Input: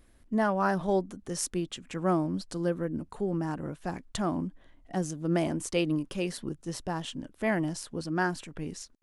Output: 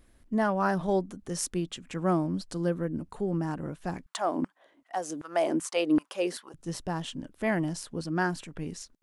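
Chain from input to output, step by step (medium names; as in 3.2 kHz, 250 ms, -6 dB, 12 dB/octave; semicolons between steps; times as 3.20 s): 4.06–6.54 s: LFO high-pass saw down 2.6 Hz 250–1500 Hz; peaking EQ 170 Hz +2.5 dB 0.22 oct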